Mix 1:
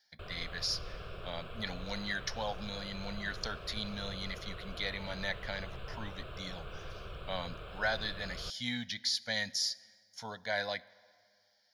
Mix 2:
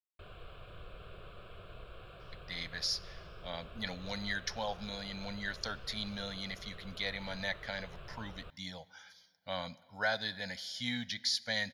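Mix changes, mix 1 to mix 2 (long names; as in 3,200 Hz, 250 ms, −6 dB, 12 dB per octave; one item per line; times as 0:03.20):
speech: entry +2.20 s
background −5.5 dB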